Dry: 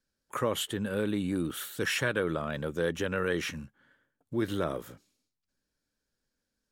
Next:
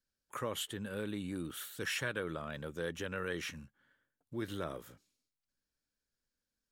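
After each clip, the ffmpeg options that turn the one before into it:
-af "equalizer=f=340:w=0.31:g=-4,volume=-5.5dB"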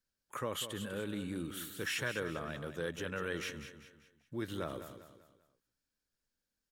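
-af "aecho=1:1:196|392|588|784:0.299|0.119|0.0478|0.0191"

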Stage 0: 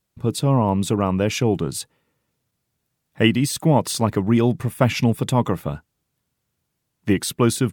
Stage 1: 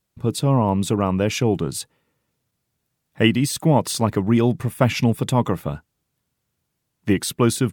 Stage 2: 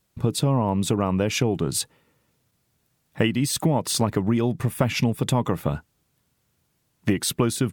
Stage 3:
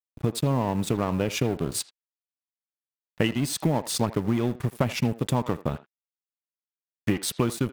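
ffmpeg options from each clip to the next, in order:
-af anull
-af "acompressor=threshold=-24dB:ratio=6,volume=5.5dB"
-filter_complex "[0:a]acrusher=bits=9:mode=log:mix=0:aa=0.000001,aeval=exprs='sgn(val(0))*max(abs(val(0))-0.0211,0)':c=same,asplit=2[a][b];[b]adelay=80,highpass=300,lowpass=3.4k,asoftclip=type=hard:threshold=-16.5dB,volume=-15dB[c];[a][c]amix=inputs=2:normalize=0,volume=-1.5dB"

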